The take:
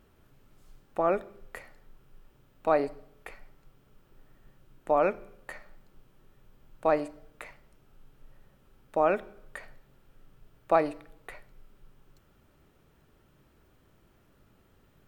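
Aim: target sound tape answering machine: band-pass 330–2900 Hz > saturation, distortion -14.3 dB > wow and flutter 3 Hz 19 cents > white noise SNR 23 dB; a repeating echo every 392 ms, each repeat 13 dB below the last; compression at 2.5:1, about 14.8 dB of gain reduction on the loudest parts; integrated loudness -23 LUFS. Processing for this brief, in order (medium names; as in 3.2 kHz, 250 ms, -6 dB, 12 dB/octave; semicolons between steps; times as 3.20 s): compression 2.5:1, threshold -42 dBFS; band-pass 330–2900 Hz; feedback delay 392 ms, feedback 22%, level -13 dB; saturation -32 dBFS; wow and flutter 3 Hz 19 cents; white noise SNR 23 dB; trim +24 dB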